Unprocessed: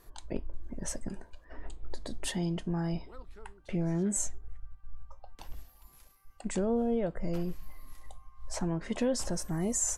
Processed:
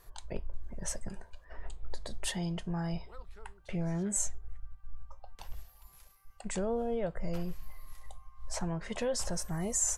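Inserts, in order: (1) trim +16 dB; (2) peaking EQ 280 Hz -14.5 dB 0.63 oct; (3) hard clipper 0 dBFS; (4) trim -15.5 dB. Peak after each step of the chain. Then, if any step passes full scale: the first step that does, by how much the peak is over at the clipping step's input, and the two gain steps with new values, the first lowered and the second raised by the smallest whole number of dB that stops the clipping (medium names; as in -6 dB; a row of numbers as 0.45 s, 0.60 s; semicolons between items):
-3.0 dBFS, -3.5 dBFS, -3.5 dBFS, -19.0 dBFS; nothing clips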